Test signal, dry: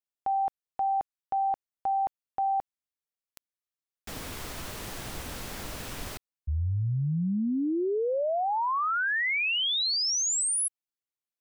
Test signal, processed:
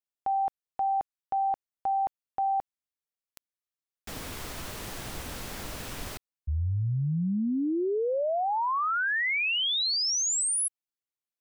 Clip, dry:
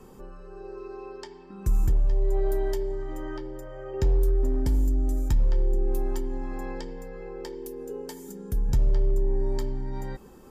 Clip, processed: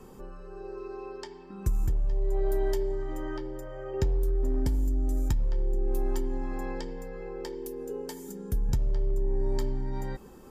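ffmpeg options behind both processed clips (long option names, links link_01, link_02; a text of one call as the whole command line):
ffmpeg -i in.wav -af "acompressor=threshold=-28dB:ratio=4:attack=76:release=39:knee=1:detection=peak" out.wav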